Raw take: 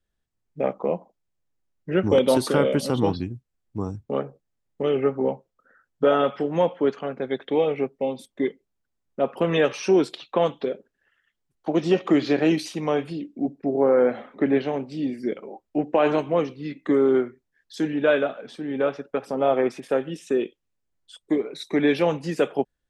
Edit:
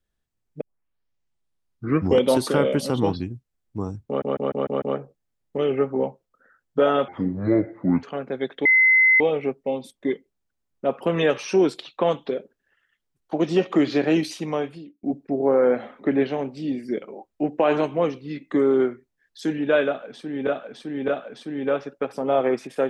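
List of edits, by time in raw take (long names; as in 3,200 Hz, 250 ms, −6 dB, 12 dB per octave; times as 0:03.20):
0:00.61: tape start 1.63 s
0:04.07: stutter 0.15 s, 6 plays
0:06.33–0:06.93: play speed 63%
0:07.55: insert tone 2,050 Hz −12.5 dBFS 0.55 s
0:12.79–0:13.38: fade out
0:18.21–0:18.82: repeat, 3 plays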